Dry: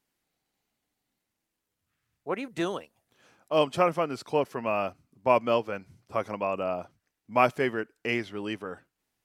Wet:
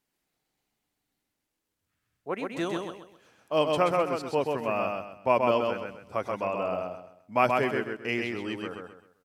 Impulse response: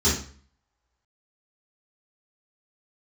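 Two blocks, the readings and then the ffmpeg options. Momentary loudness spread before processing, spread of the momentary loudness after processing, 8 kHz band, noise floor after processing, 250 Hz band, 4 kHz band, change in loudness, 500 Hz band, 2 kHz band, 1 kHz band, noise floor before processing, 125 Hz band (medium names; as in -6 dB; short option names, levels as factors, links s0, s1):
13 LU, 14 LU, no reading, -83 dBFS, +0.5 dB, +0.5 dB, 0.0 dB, +0.5 dB, +0.5 dB, +0.5 dB, -84 dBFS, 0.0 dB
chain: -af "aecho=1:1:130|260|390|520:0.668|0.214|0.0684|0.0219,volume=0.841"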